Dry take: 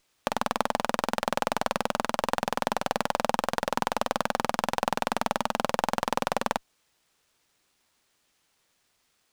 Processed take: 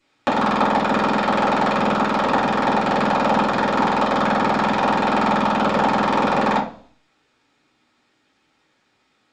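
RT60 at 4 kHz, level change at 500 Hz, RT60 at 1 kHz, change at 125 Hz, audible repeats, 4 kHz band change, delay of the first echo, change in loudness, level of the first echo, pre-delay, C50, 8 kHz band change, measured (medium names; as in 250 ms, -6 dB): 0.60 s, +9.0 dB, 0.45 s, +12.0 dB, no echo, +5.0 dB, no echo, +10.0 dB, no echo, 3 ms, 8.5 dB, -3.5 dB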